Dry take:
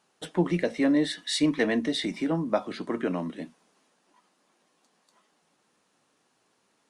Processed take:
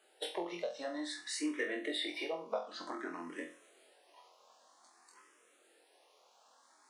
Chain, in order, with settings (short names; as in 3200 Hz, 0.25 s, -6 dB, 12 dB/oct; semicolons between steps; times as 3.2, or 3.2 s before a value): bin magnitudes rounded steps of 15 dB; HPF 370 Hz 24 dB/oct; compressor 4:1, threshold -42 dBFS, peak gain reduction 18 dB; flutter echo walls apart 4 m, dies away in 0.36 s; endless phaser +0.53 Hz; gain +5.5 dB